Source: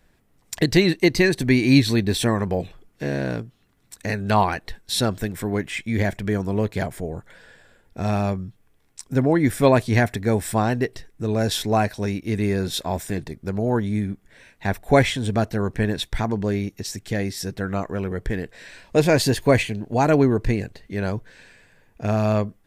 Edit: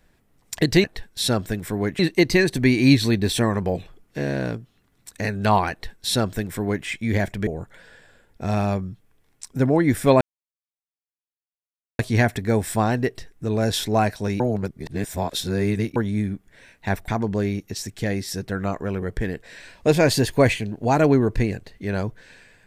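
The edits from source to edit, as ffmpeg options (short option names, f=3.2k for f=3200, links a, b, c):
-filter_complex "[0:a]asplit=8[a][b][c][d][e][f][g][h];[a]atrim=end=0.842[i];[b]atrim=start=4.558:end=5.712[j];[c]atrim=start=0.838:end=6.322[k];[d]atrim=start=7.028:end=9.77,asetpts=PTS-STARTPTS,afade=t=out:st=2.738:d=0.004:c=hsin,apad=pad_dur=1.78[l];[e]atrim=start=9.77:end=12.182,asetpts=PTS-STARTPTS,afade=t=in:d=0.004:c=hsin[m];[f]atrim=start=12.178:end=13.742,asetpts=PTS-STARTPTS,areverse[n];[g]atrim=start=13.738:end=14.862[o];[h]atrim=start=16.168[p];[i][j]acrossfade=d=0.004:c1=hsin:c2=hsin[q];[q][k]acrossfade=d=0.004:c1=hsin:c2=hsin[r];[l][m]concat=n=2:v=0:a=1[s];[r][s]acrossfade=d=0.004:c1=hsin:c2=hsin[t];[t][n]acrossfade=d=0.004:c1=hsin:c2=hsin[u];[u][o]acrossfade=d=0.004:c1=hsin:c2=hsin[v];[v][p]acrossfade=d=0.004:c1=hsin:c2=hsin"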